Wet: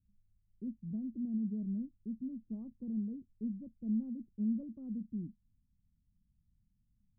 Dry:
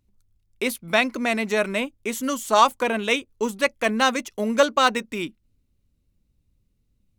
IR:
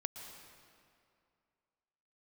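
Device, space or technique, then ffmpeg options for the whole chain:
the neighbour's flat through the wall: -af "lowpass=f=210:w=0.5412,lowpass=f=210:w=1.3066,equalizer=f=200:t=o:w=0.92:g=6,volume=0.422"

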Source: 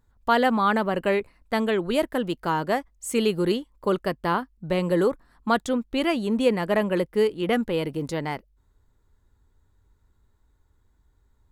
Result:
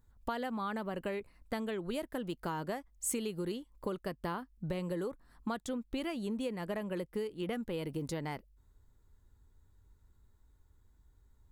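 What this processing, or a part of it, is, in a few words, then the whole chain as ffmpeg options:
ASMR close-microphone chain: -af "lowshelf=f=250:g=5,acompressor=threshold=0.0398:ratio=10,highshelf=f=6200:g=7,volume=0.531"

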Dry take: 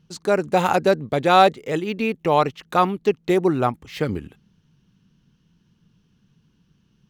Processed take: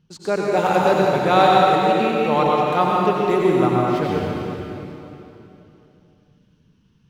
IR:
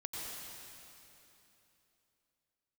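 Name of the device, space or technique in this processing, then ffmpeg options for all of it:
swimming-pool hall: -filter_complex "[1:a]atrim=start_sample=2205[s0];[0:a][s0]afir=irnorm=-1:irlink=0,highshelf=f=5600:g=-4.5,volume=1.26"

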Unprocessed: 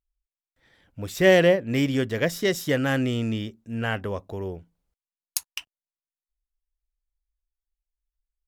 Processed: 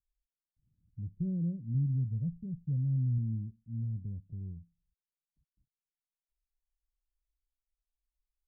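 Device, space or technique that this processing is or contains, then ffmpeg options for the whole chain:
the neighbour's flat through the wall: -filter_complex "[0:a]asettb=1/sr,asplit=3[s0][s1][s2];[s0]atrim=end=1.744[s3];[s1]atrim=start=1.74:end=3.18,asetpts=PTS-STARTPTS,afade=t=in:d=0.004:c=qsin,afade=t=out:st=1.436:d=0.004:c=qsin,aecho=1:1:1.5:0.66,atrim=end_sample=63504[s4];[s2]atrim=start=3.176[s5];[s3][s4]acrossfade=d=0.004:c1=hsin:c2=qsin[s6];[s6][s5]acrossfade=d=0.004:c1=qsin:c2=hsin,lowpass=f=180:w=0.5412,lowpass=f=180:w=1.3066,equalizer=f=130:t=o:w=0.77:g=3,volume=0.596"

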